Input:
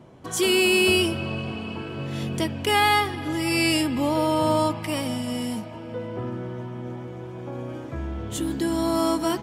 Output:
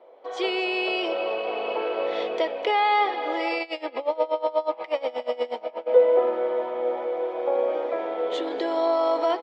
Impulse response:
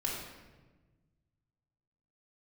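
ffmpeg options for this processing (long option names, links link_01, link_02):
-filter_complex "[0:a]dynaudnorm=framelen=280:gausssize=3:maxgain=11dB,alimiter=limit=-10.5dB:level=0:latency=1:release=20,highpass=frequency=490:width=0.5412,highpass=frequency=490:width=1.3066,equalizer=frequency=500:width_type=q:width=4:gain=10,equalizer=frequency=730:width_type=q:width=4:gain=3,equalizer=frequency=1100:width_type=q:width=4:gain=-4,equalizer=frequency=1600:width_type=q:width=4:gain=-9,equalizer=frequency=2800:width_type=q:width=4:gain=-9,lowpass=frequency=3400:width=0.5412,lowpass=frequency=3400:width=1.3066,aecho=1:1:248:0.15,asplit=3[link_01][link_02][link_03];[link_01]afade=type=out:start_time=3.58:duration=0.02[link_04];[link_02]aeval=exprs='val(0)*pow(10,-22*(0.5-0.5*cos(2*PI*8.3*n/s))/20)':channel_layout=same,afade=type=in:start_time=3.58:duration=0.02,afade=type=out:start_time=5.86:duration=0.02[link_05];[link_03]afade=type=in:start_time=5.86:duration=0.02[link_06];[link_04][link_05][link_06]amix=inputs=3:normalize=0"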